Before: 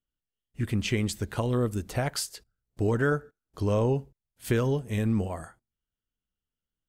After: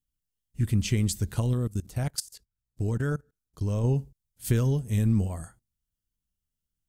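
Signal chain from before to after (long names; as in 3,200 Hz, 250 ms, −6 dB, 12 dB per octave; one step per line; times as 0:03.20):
bass and treble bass +12 dB, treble +12 dB
0:01.53–0:03.84: output level in coarse steps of 20 dB
level −6.5 dB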